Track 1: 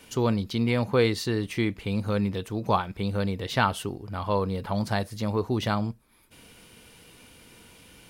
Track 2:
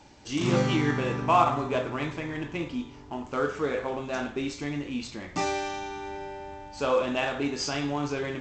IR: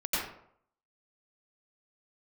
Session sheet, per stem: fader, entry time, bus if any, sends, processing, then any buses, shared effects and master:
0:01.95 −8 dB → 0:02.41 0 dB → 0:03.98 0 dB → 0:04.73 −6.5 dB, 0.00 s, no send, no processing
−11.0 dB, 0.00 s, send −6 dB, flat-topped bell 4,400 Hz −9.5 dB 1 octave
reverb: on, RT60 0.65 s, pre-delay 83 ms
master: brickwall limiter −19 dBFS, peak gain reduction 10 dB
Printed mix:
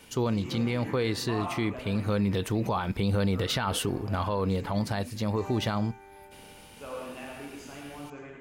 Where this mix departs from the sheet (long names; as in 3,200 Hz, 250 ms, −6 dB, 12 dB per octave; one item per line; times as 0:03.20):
stem 1 −8.0 dB → −1.0 dB
stem 2 −11.0 dB → −18.0 dB